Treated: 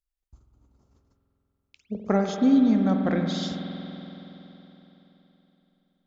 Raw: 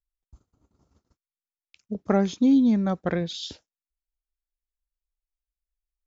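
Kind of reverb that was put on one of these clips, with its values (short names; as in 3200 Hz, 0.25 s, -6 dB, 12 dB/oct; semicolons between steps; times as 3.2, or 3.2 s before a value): spring tank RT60 3.7 s, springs 47 ms, chirp 65 ms, DRR 3 dB; gain -1 dB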